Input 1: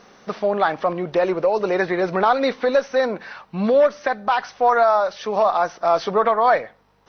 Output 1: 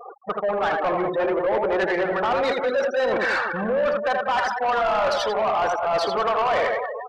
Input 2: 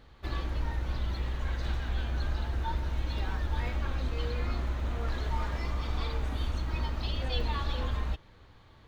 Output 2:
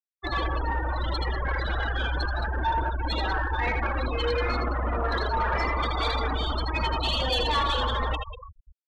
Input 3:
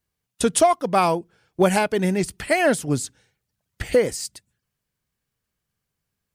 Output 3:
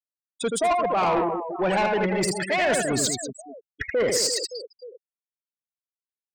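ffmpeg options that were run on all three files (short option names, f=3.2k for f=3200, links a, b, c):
-filter_complex "[0:a]areverse,acompressor=threshold=-31dB:ratio=12,areverse,asplit=2[a][b];[b]highpass=f=720:p=1,volume=14dB,asoftclip=type=tanh:threshold=-21.5dB[c];[a][c]amix=inputs=2:normalize=0,lowpass=f=5.4k:p=1,volume=-6dB,aemphasis=mode=reproduction:type=50fm,aecho=1:1:80|192|348.8|568.3|875.6:0.631|0.398|0.251|0.158|0.1,acontrast=24,bass=f=250:g=-3,treble=f=4k:g=10,afftfilt=real='re*gte(hypot(re,im),0.0447)':imag='im*gte(hypot(re,im),0.0447)':win_size=1024:overlap=0.75,asoftclip=type=tanh:threshold=-22.5dB,volume=5.5dB"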